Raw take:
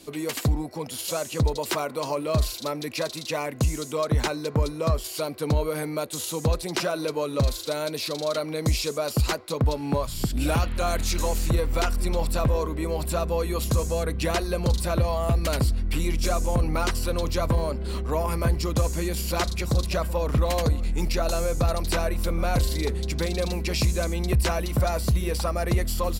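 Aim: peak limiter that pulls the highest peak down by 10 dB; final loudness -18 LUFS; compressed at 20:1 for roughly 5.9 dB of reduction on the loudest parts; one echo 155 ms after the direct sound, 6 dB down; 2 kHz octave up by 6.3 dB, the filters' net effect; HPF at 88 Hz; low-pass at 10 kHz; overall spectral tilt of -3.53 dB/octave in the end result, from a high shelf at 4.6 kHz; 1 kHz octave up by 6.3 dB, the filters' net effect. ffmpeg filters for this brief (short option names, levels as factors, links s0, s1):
-af "highpass=88,lowpass=10000,equalizer=f=1000:t=o:g=6.5,equalizer=f=2000:t=o:g=4.5,highshelf=f=4600:g=8.5,acompressor=threshold=0.0708:ratio=20,alimiter=limit=0.0891:level=0:latency=1,aecho=1:1:155:0.501,volume=3.98"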